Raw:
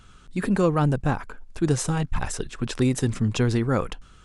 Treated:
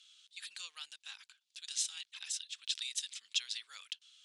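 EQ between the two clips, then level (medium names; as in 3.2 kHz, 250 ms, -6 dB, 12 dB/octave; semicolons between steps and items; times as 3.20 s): ladder band-pass 4 kHz, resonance 50%; differentiator; treble shelf 4.8 kHz -7 dB; +16.0 dB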